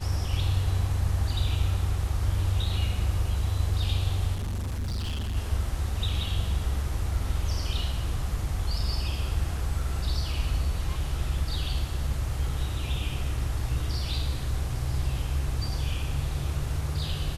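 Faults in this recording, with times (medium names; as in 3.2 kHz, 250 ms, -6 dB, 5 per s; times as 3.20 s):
4.34–5.37 s: clipped -27.5 dBFS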